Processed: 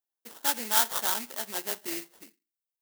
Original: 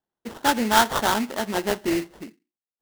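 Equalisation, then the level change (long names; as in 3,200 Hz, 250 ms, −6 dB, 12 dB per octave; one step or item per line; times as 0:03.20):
RIAA equalisation recording
−11.5 dB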